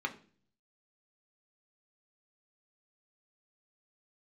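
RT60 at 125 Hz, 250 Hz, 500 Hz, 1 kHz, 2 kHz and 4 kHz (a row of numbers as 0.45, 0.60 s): 0.85, 0.70, 0.50, 0.35, 0.40, 0.45 s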